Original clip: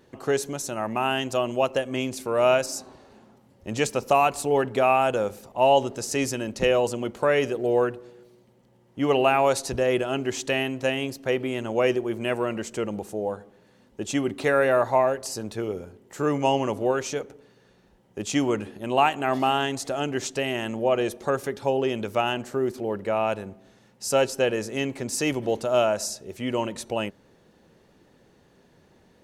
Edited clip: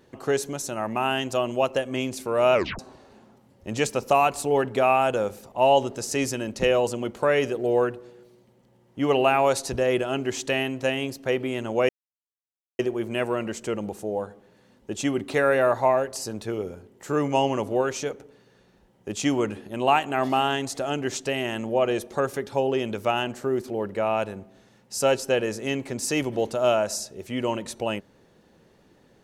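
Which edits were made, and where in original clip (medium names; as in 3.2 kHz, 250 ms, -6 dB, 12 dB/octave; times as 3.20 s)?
2.54 s: tape stop 0.25 s
11.89 s: insert silence 0.90 s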